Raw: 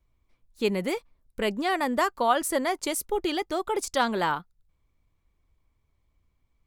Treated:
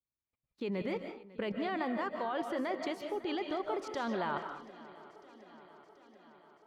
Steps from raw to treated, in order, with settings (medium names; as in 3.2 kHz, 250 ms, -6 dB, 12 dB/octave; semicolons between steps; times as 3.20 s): gate -58 dBFS, range -21 dB; high-pass 110 Hz 12 dB/octave; treble shelf 7.7 kHz +8 dB; level held to a coarse grid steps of 17 dB; distance through air 260 m; shuffle delay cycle 732 ms, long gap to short 3:1, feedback 64%, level -20 dB; reverberation RT60 0.40 s, pre-delay 110 ms, DRR 5.5 dB